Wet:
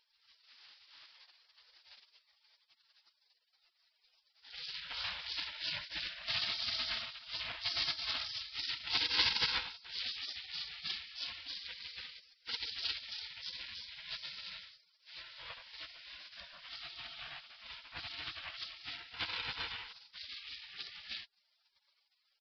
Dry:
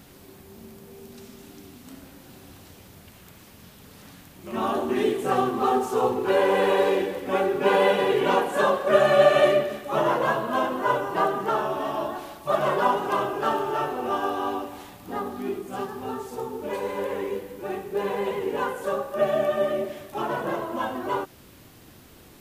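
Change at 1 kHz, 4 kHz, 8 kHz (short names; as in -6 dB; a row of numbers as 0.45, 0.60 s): -26.0, +2.0, -13.0 dB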